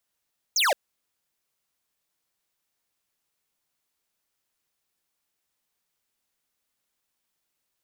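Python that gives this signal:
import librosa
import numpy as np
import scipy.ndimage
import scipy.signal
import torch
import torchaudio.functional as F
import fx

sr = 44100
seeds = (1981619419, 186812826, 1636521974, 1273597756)

y = fx.laser_zap(sr, level_db=-21.5, start_hz=7100.0, end_hz=500.0, length_s=0.17, wave='square')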